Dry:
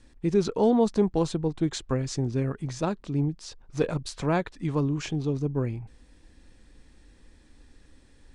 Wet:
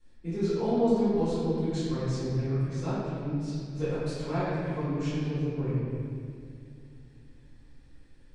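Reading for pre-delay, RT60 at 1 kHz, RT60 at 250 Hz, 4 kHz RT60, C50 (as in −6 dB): 3 ms, 2.1 s, 3.6 s, 1.6 s, −4.0 dB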